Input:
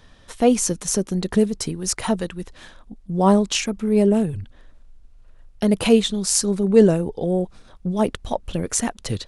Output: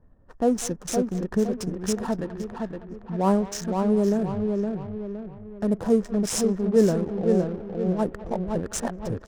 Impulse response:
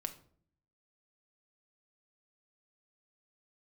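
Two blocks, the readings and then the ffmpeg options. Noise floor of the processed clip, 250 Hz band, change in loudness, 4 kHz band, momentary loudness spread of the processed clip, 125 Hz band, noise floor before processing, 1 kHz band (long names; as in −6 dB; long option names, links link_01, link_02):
−47 dBFS, −3.5 dB, −5.0 dB, −11.5 dB, 12 LU, −3.5 dB, −50 dBFS, −4.0 dB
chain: -filter_complex "[0:a]asplit=2[link_01][link_02];[link_02]adelay=515,lowpass=frequency=3200:poles=1,volume=-4dB,asplit=2[link_03][link_04];[link_04]adelay=515,lowpass=frequency=3200:poles=1,volume=0.42,asplit=2[link_05][link_06];[link_06]adelay=515,lowpass=frequency=3200:poles=1,volume=0.42,asplit=2[link_07][link_08];[link_08]adelay=515,lowpass=frequency=3200:poles=1,volume=0.42,asplit=2[link_09][link_10];[link_10]adelay=515,lowpass=frequency=3200:poles=1,volume=0.42[link_11];[link_03][link_05][link_07][link_09][link_11]amix=inputs=5:normalize=0[link_12];[link_01][link_12]amix=inputs=2:normalize=0,afftfilt=real='re*(1-between(b*sr/4096,1900,4900))':imag='im*(1-between(b*sr/4096,1900,4900))':win_size=4096:overlap=0.75,asplit=2[link_13][link_14];[link_14]adelay=200,highpass=300,lowpass=3400,asoftclip=type=hard:threshold=-12dB,volume=-16dB[link_15];[link_13][link_15]amix=inputs=2:normalize=0,adynamicsmooth=sensitivity=6.5:basefreq=510,volume=-5.5dB"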